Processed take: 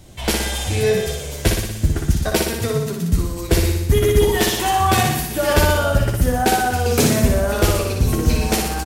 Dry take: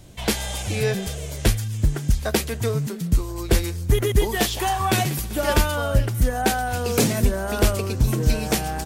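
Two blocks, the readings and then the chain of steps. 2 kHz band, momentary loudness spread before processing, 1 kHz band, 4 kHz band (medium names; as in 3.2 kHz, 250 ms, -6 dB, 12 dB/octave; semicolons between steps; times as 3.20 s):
+4.5 dB, 4 LU, +5.5 dB, +4.5 dB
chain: doubling 12 ms -7 dB; flutter echo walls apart 10.3 m, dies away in 0.88 s; trim +1.5 dB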